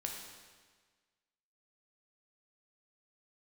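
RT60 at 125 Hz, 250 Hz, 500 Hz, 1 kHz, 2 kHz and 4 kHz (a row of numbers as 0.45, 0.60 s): 1.5, 1.5, 1.5, 1.5, 1.5, 1.4 s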